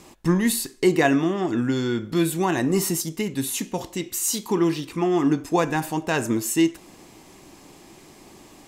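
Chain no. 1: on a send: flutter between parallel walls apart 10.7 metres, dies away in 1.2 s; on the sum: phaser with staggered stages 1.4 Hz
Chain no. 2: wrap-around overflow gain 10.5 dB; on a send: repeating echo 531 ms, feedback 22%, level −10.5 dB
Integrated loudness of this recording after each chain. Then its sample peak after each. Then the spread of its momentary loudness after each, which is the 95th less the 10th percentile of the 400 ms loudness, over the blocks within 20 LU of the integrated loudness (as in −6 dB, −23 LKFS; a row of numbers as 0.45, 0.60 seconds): −23.5, −23.0 LKFS; −4.5, −8.5 dBFS; 9, 11 LU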